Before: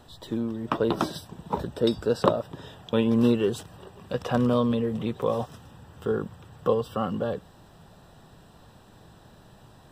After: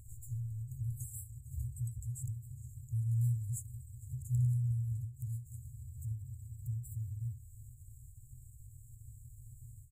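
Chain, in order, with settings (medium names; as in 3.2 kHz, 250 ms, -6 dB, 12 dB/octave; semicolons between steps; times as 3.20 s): FFT band-reject 130–6600 Hz; in parallel at -2.5 dB: compression, threshold -49 dBFS, peak gain reduction 19 dB; on the sum: feedback delay 456 ms, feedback 27%, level -20.5 dB; endings held to a fixed fall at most 150 dB/s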